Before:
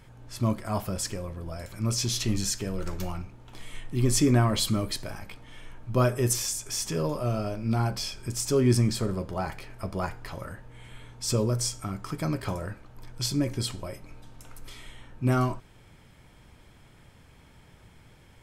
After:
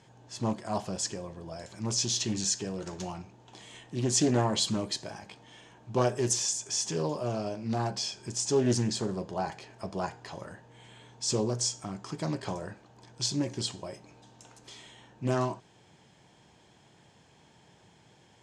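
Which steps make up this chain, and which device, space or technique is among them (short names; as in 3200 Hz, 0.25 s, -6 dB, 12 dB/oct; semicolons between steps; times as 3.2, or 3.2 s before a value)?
full-range speaker at full volume (Doppler distortion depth 0.38 ms; speaker cabinet 170–8000 Hz, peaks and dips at 260 Hz -5 dB, 540 Hz -3 dB, 780 Hz +3 dB, 1300 Hz -9 dB, 2200 Hz -7 dB, 6700 Hz +5 dB)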